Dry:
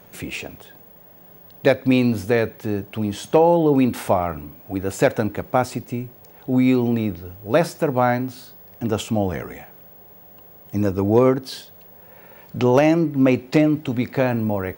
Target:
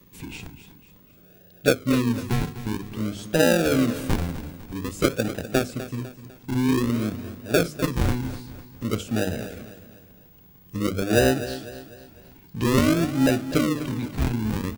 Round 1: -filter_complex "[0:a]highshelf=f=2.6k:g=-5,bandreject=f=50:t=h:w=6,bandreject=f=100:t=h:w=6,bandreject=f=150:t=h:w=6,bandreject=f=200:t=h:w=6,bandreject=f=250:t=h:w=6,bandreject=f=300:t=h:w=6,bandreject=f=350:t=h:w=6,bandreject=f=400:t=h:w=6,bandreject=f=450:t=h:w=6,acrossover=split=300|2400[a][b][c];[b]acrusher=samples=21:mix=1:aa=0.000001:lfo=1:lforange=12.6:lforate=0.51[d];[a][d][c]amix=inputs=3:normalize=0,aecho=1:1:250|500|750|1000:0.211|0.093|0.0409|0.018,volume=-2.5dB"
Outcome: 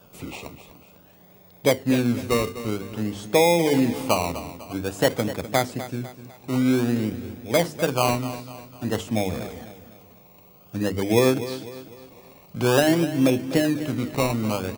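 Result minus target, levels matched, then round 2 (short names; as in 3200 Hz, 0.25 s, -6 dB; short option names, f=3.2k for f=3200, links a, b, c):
decimation with a swept rate: distortion -25 dB
-filter_complex "[0:a]highshelf=f=2.6k:g=-5,bandreject=f=50:t=h:w=6,bandreject=f=100:t=h:w=6,bandreject=f=150:t=h:w=6,bandreject=f=200:t=h:w=6,bandreject=f=250:t=h:w=6,bandreject=f=300:t=h:w=6,bandreject=f=350:t=h:w=6,bandreject=f=400:t=h:w=6,bandreject=f=450:t=h:w=6,acrossover=split=300|2400[a][b][c];[b]acrusher=samples=57:mix=1:aa=0.000001:lfo=1:lforange=34.2:lforate=0.51[d];[a][d][c]amix=inputs=3:normalize=0,aecho=1:1:250|500|750|1000:0.211|0.093|0.0409|0.018,volume=-2.5dB"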